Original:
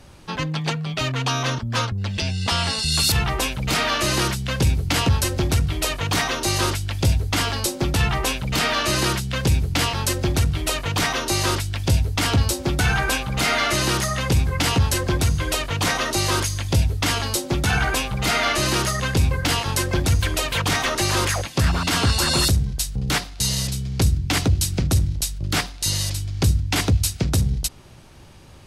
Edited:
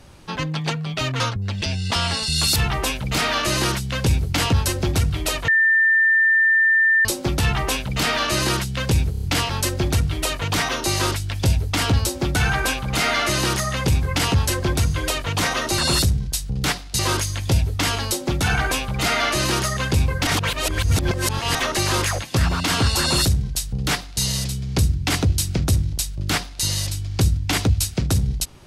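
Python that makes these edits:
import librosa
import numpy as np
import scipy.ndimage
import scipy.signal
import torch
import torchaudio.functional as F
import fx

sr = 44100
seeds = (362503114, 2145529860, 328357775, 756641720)

y = fx.edit(x, sr, fx.cut(start_s=1.2, length_s=0.56),
    fx.bleep(start_s=6.04, length_s=1.57, hz=1790.0, db=-13.0),
    fx.stutter(start_s=9.67, slice_s=0.03, count=5),
    fx.reverse_span(start_s=19.5, length_s=1.28),
    fx.duplicate(start_s=22.24, length_s=1.21, to_s=16.22), tone=tone)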